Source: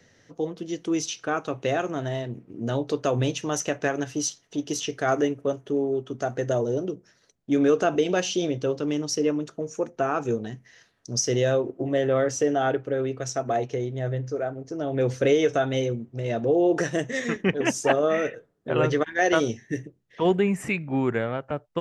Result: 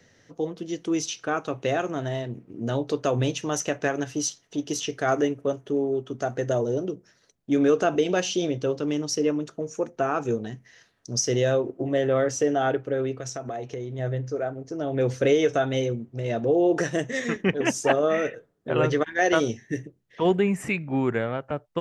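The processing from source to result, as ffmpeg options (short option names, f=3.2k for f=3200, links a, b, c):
-filter_complex "[0:a]asettb=1/sr,asplit=3[a][b][c];[a]atrim=end=13.134[d];[b]atrim=start=13.13:end=13.99,asetpts=PTS-STARTPTS,afade=t=in:d=0.004:c=qsin,afade=t=out:st=0.856:d=0.004:c=qsin,acompressor=threshold=-29dB:ratio=5:attack=3.2:release=140:knee=1:detection=peak[e];[c]atrim=start=13.986[f];[d][e]acrossfade=d=0.004:c1=hsin:c2=qsin[g];[g][f]acrossfade=d=0.004:c1=qsin:c2=hsin"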